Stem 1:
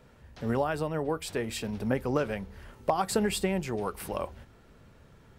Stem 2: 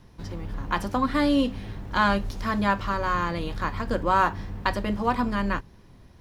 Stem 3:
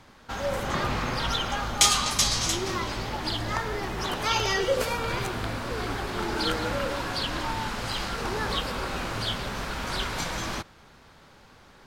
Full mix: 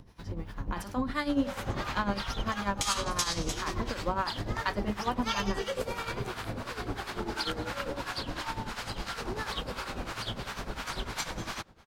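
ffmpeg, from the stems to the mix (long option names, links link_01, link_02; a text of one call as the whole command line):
ffmpeg -i stem1.wav -i stem2.wav -i stem3.wav -filter_complex "[0:a]adelay=2450,volume=-14.5dB[link_01];[1:a]volume=2.5dB[link_02];[2:a]adelay=1000,volume=1dB[link_03];[link_02][link_03]amix=inputs=2:normalize=0,tremolo=f=10:d=0.71,acompressor=threshold=-26dB:ratio=2,volume=0dB[link_04];[link_01][link_04]amix=inputs=2:normalize=0,acompressor=mode=upward:threshold=-48dB:ratio=2.5,acrossover=split=780[link_05][link_06];[link_05]aeval=exprs='val(0)*(1-0.7/2+0.7/2*cos(2*PI*2.9*n/s))':channel_layout=same[link_07];[link_06]aeval=exprs='val(0)*(1-0.7/2-0.7/2*cos(2*PI*2.9*n/s))':channel_layout=same[link_08];[link_07][link_08]amix=inputs=2:normalize=0" out.wav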